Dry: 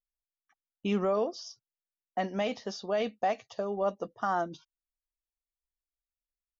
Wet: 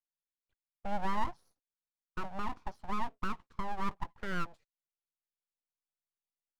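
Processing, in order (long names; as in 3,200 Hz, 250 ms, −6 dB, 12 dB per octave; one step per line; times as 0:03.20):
band-pass filter sweep 440 Hz → 3,600 Hz, 0:04.18–0:05.91
full-wave rectification
level +3 dB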